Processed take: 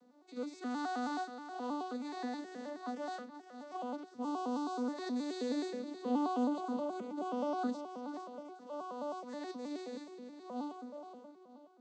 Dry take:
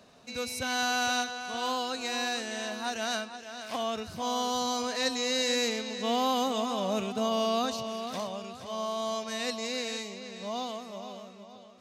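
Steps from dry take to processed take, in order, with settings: arpeggiated vocoder minor triad, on B3, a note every 0.106 s; bell 2700 Hz -10 dB 1.1 oct; gain -6 dB

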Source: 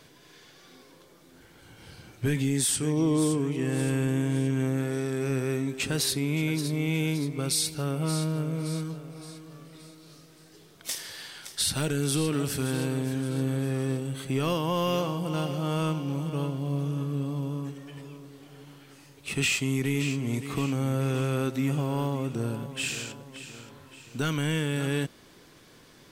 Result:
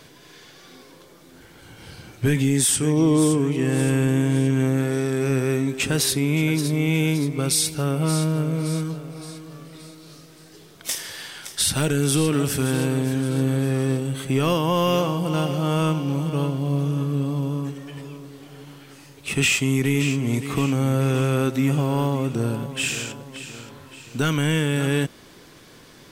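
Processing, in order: dynamic EQ 4300 Hz, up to -5 dB, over -54 dBFS, Q 5; gain +6.5 dB

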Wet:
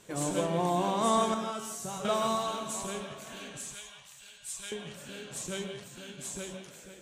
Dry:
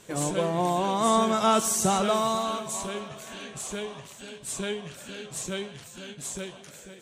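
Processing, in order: 1.34–2.05 resonator 140 Hz, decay 0.5 s, harmonics all, mix 80%; 3.57–4.72 passive tone stack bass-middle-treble 10-0-10; non-linear reverb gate 0.19 s rising, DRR 5.5 dB; gain -4.5 dB

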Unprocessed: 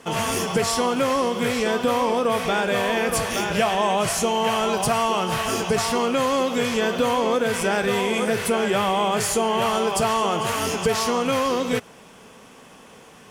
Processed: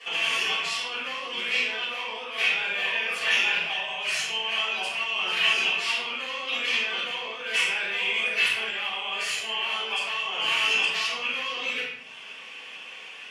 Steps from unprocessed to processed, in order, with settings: reverb removal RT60 0.67 s; negative-ratio compressor -29 dBFS, ratio -1; band-pass 2700 Hz, Q 3; shoebox room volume 200 m³, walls mixed, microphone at 5.9 m; gain -2.5 dB

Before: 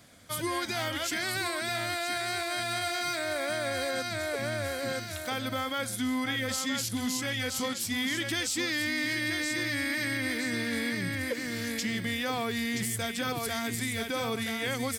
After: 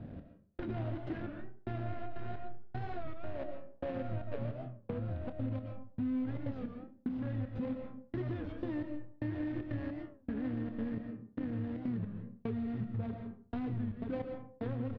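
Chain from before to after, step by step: median filter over 41 samples; step gate "xx....xxxx." 153 bpm -60 dB; reverse; upward compressor, threshold -46 dBFS; reverse; LPF 3400 Hz 24 dB/oct; low shelf 310 Hz +11 dB; de-hum 69.89 Hz, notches 5; on a send at -7.5 dB: reverb RT60 0.45 s, pre-delay 80 ms; on the sum: compressor 4:1, threshold -37 dBFS, peak gain reduction 12.5 dB; doubler 27 ms -12 dB; record warp 33 1/3 rpm, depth 160 cents; gain +1 dB

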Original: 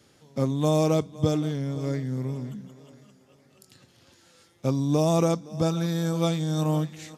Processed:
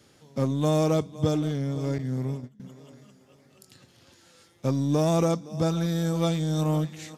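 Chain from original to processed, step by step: 1.98–2.6 gate -31 dBFS, range -22 dB; in parallel at -6 dB: hard clip -26.5 dBFS, distortion -7 dB; on the sum: gain -2.5 dB

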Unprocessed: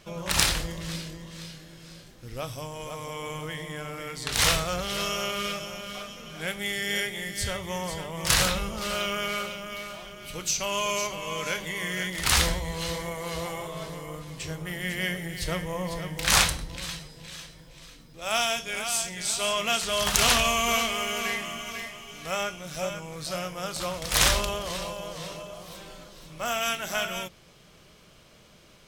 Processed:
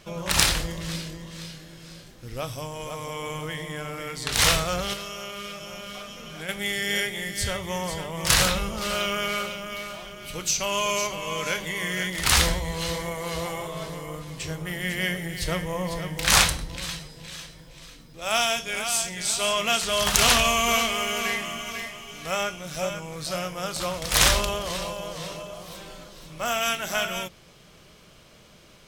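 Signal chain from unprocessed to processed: 4.93–6.49 compressor 4:1, threshold -37 dBFS, peak gain reduction 9.5 dB; gain +2.5 dB

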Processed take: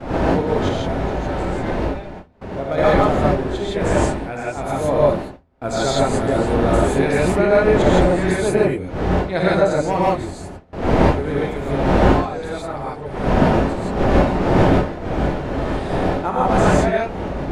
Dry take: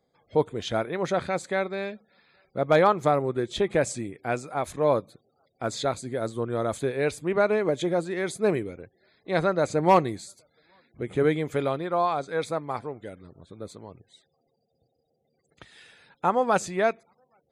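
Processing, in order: wind noise 610 Hz -24 dBFS; non-linear reverb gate 0.19 s rising, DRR -6.5 dB; AGC; gate with hold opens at -22 dBFS; bell 1100 Hz -4.5 dB 0.31 oct; 0.75–2.78 compressor 5:1, threshold -18 dBFS, peak gain reduction 10.5 dB; low shelf 150 Hz +4.5 dB; de-hum 83.75 Hz, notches 3; gain -2.5 dB

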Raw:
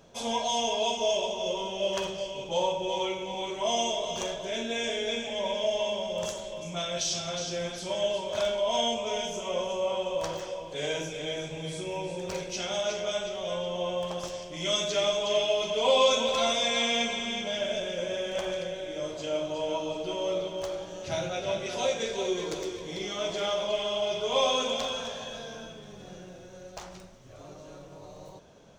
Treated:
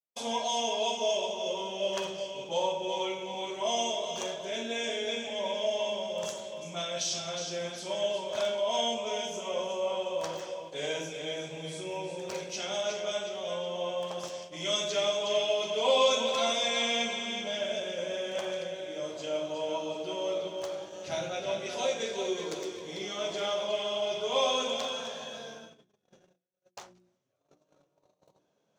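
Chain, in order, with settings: HPF 160 Hz 12 dB/oct; gate -41 dBFS, range -48 dB; notches 60/120/180/240/300/360 Hz; reverse; upward compressor, threshold -48 dBFS; reverse; gain -2 dB

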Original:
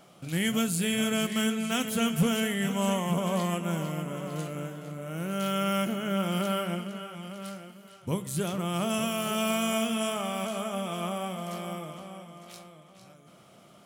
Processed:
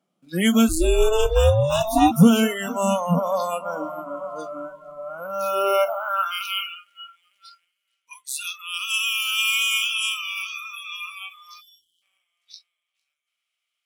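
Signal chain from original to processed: high-pass sweep 210 Hz -> 2400 Hz, 5.44–6.47; in parallel at -10.5 dB: bit-crush 7-bit; 0.68–2.1 on the sum: ring modulator 140 Hz -> 550 Hz; 11.6–12.02 spectral delete 430–2900 Hz; spectral noise reduction 28 dB; gain +5.5 dB

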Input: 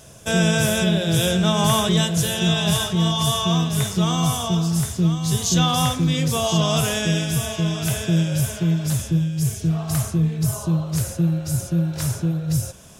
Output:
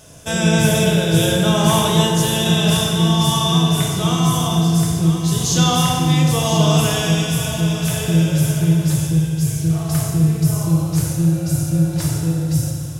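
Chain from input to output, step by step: FDN reverb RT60 2.3 s, low-frequency decay 1×, high-frequency decay 0.8×, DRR -0.5 dB

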